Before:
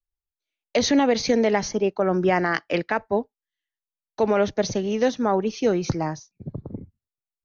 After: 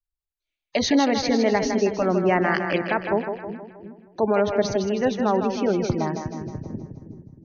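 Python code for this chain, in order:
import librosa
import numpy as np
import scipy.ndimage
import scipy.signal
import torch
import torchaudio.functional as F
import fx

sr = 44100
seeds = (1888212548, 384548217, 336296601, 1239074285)

y = fx.notch(x, sr, hz=480.0, q=12.0)
y = fx.spec_gate(y, sr, threshold_db=-30, keep='strong')
y = fx.peak_eq(y, sr, hz=5900.0, db=-3.5, octaves=0.31)
y = fx.echo_split(y, sr, split_hz=320.0, low_ms=357, high_ms=158, feedback_pct=52, wet_db=-6.5)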